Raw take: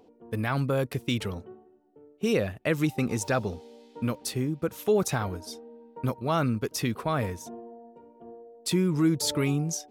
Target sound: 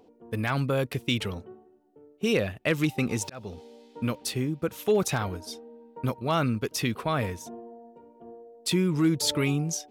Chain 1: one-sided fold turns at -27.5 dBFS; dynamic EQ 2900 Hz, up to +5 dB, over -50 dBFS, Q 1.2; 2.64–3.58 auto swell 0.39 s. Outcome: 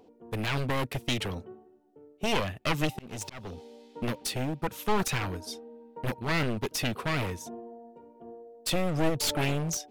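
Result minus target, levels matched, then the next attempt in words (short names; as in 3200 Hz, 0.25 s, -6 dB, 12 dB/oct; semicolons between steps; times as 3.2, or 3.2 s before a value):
one-sided fold: distortion +35 dB
one-sided fold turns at -15.5 dBFS; dynamic EQ 2900 Hz, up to +5 dB, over -50 dBFS, Q 1.2; 2.64–3.58 auto swell 0.39 s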